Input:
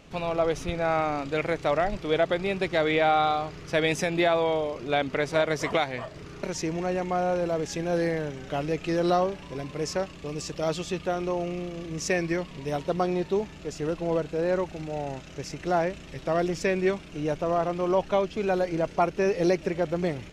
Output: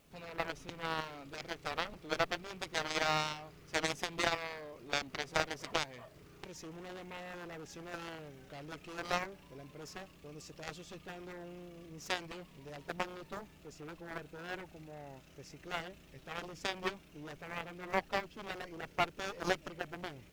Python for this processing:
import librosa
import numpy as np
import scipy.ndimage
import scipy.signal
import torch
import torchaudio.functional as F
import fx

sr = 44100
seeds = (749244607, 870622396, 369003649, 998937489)

y = fx.dmg_noise_colour(x, sr, seeds[0], colour='white', level_db=-58.0)
y = fx.cheby_harmonics(y, sr, harmonics=(2, 3, 7), levels_db=(-16, -8, -44), full_scale_db=-12.5)
y = F.gain(torch.from_numpy(y), -2.5).numpy()